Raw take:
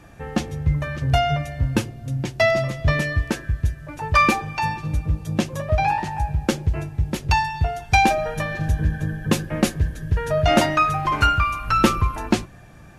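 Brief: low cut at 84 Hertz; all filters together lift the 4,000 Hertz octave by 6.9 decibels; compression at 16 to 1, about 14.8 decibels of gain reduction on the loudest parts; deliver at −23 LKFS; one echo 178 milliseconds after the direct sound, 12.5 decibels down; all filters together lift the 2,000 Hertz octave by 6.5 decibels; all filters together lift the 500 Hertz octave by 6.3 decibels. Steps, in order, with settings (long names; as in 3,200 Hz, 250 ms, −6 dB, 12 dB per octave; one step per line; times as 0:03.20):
high-pass filter 84 Hz
parametric band 500 Hz +8.5 dB
parametric band 2,000 Hz +5.5 dB
parametric band 4,000 Hz +7 dB
downward compressor 16 to 1, threshold −22 dBFS
single-tap delay 178 ms −12.5 dB
level +4 dB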